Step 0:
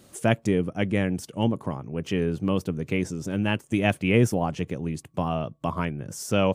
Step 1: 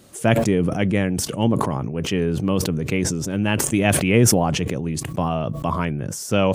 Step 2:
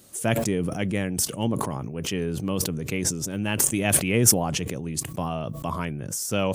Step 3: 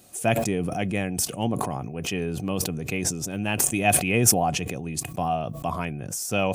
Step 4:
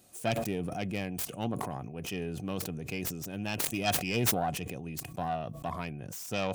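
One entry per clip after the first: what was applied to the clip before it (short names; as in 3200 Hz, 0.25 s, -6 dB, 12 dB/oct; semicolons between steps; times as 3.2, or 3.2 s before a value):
sustainer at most 28 dB/s; gain +3.5 dB
high shelf 5500 Hz +12 dB; gain -6.5 dB
small resonant body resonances 730/2500 Hz, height 12 dB, ringing for 45 ms; gain -1 dB
self-modulated delay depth 0.34 ms; gain -7.5 dB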